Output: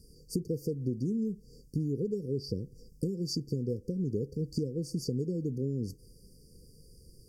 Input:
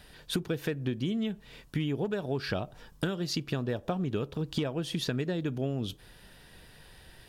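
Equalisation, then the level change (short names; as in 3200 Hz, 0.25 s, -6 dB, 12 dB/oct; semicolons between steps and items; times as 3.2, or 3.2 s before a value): brick-wall FIR band-stop 530–4500 Hz; bell 320 Hz -2.5 dB 0.39 oct; high shelf 9800 Hz -4 dB; 0.0 dB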